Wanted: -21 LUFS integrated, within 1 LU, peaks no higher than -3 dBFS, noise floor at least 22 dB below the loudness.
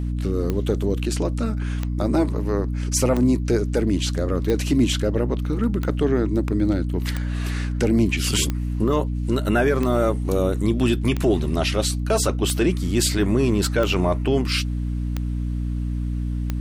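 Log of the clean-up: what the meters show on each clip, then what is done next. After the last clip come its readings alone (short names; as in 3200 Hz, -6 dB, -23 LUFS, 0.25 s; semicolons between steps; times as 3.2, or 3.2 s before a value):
clicks 13; hum 60 Hz; harmonics up to 300 Hz; hum level -22 dBFS; loudness -22.5 LUFS; peak -9.0 dBFS; loudness target -21.0 LUFS
-> de-click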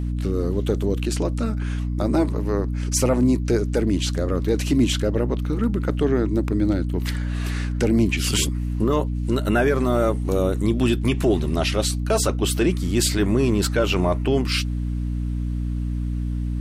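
clicks 0; hum 60 Hz; harmonics up to 300 Hz; hum level -22 dBFS
-> notches 60/120/180/240/300 Hz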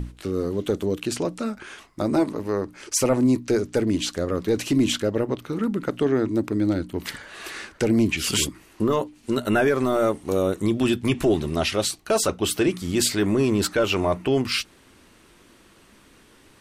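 hum none; loudness -23.5 LUFS; peak -10.0 dBFS; loudness target -21.0 LUFS
-> gain +2.5 dB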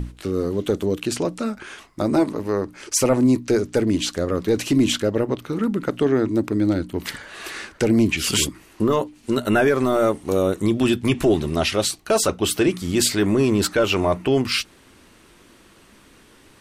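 loudness -21.0 LUFS; peak -7.5 dBFS; noise floor -52 dBFS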